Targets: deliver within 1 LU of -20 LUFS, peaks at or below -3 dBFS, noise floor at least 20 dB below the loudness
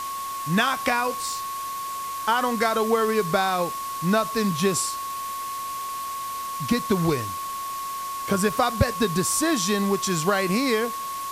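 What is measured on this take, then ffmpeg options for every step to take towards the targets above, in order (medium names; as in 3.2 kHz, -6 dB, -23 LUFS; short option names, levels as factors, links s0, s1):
steady tone 1.1 kHz; tone level -29 dBFS; noise floor -31 dBFS; noise floor target -45 dBFS; loudness -24.5 LUFS; peak level -5.5 dBFS; loudness target -20.0 LUFS
-> -af "bandreject=f=1100:w=30"
-af "afftdn=nr=14:nf=-31"
-af "volume=1.68,alimiter=limit=0.708:level=0:latency=1"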